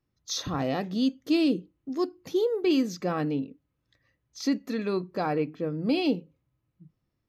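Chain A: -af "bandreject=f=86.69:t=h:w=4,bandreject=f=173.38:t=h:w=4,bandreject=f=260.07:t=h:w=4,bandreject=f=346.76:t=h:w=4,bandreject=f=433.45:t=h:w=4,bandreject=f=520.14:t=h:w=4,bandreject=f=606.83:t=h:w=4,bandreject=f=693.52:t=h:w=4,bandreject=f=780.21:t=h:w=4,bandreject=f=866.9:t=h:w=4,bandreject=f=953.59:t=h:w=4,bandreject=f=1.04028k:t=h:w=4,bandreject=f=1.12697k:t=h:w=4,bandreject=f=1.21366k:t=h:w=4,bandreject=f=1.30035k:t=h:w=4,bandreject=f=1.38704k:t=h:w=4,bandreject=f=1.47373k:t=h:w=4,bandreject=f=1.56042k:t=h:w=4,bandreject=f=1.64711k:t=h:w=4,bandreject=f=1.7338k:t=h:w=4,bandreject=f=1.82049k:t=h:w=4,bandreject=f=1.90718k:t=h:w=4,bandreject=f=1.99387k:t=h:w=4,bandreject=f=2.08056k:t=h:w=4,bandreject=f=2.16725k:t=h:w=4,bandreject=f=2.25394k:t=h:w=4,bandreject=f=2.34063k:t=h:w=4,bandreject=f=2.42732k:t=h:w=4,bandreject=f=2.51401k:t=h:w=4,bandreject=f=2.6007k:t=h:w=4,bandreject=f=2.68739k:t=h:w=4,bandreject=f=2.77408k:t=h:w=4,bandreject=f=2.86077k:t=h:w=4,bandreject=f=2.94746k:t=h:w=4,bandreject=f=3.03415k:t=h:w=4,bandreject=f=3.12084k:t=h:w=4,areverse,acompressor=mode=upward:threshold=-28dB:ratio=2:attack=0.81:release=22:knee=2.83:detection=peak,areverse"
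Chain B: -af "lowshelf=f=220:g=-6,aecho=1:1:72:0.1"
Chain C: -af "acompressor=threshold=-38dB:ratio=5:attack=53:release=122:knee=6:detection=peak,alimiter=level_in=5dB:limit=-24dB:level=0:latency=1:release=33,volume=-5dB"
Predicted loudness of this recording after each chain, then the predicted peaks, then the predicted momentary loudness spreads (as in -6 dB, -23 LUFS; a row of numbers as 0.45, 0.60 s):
-28.5, -30.0, -39.0 LUFS; -13.5, -16.5, -29.0 dBFS; 19, 8, 10 LU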